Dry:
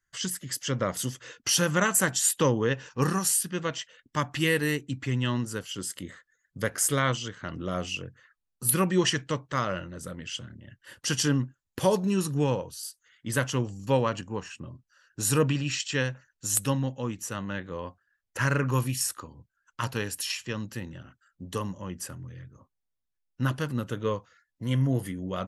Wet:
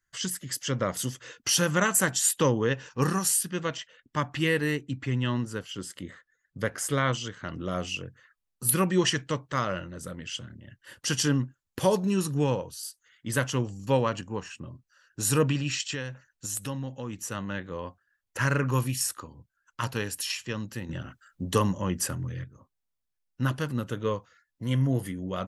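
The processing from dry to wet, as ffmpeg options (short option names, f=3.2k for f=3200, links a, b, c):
-filter_complex "[0:a]asettb=1/sr,asplit=3[a][b][c];[a]atrim=end=3.774[d];[b]atrim=start=3.77:end=7.13,asetpts=PTS-STARTPTS,afade=t=in:d=0.004:c=qsin,afade=t=out:st=3.356:d=0.004:c=qsin,lowpass=f=3.8k:p=1[e];[c]atrim=start=7.126[f];[d][e]acrossfade=d=0.004:c1=hsin:c2=qsin[g];[g][f]acrossfade=d=0.004:c1=qsin:c2=hsin,asettb=1/sr,asplit=3[h][i][j];[h]atrim=end=15.944[k];[i]atrim=start=15.94:end=17.13,asetpts=PTS-STARTPTS,afade=t=in:d=0.004:c=qsin,afade=t=out:st=1.186:d=0.004:c=qsin,acompressor=threshold=-32dB:ratio=2.5:attack=3.2:release=140:knee=1:detection=peak[l];[j]atrim=start=17.126[m];[k][l]acrossfade=d=0.004:c1=hsin:c2=qsin[n];[n][m]acrossfade=d=0.004:c1=qsin:c2=hsin,asplit=3[o][p][q];[o]atrim=end=20.892[r];[p]atrim=start=20.888:end=22.442,asetpts=PTS-STARTPTS,volume=8dB[s];[q]atrim=start=22.438[t];[r][s]acrossfade=d=0.004:c1=hsin:c2=hsin[u];[u][t]acrossfade=d=0.004:c1=hsin:c2=hsin"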